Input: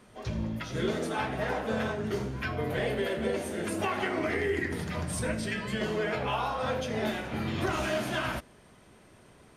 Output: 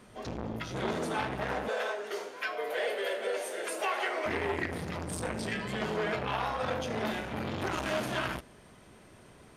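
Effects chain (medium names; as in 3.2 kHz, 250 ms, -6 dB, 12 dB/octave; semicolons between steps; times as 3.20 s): 1.68–4.26 s: Chebyshev high-pass 480 Hz, order 3; transformer saturation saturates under 1.3 kHz; trim +1.5 dB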